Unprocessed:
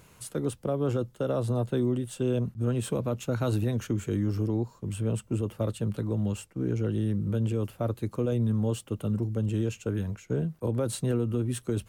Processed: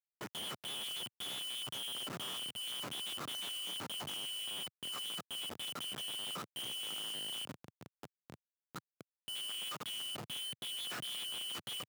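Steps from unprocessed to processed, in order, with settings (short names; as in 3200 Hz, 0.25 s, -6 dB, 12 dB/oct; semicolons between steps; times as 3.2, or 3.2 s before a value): four-band scrambler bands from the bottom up 2413; sample leveller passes 2; limiter -20 dBFS, peak gain reduction 4 dB; soft clip -28.5 dBFS, distortion -12 dB; bell 1400 Hz +3.5 dB 0.46 oct; frequency shift -34 Hz; LPF 2300 Hz 12 dB/oct, from 7.45 s 1100 Hz, from 9.28 s 3700 Hz; frequency-shifting echo 0.218 s, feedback 49%, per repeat -110 Hz, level -22.5 dB; Schmitt trigger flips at -41.5 dBFS; HPF 120 Hz 24 dB/oct; gain -4 dB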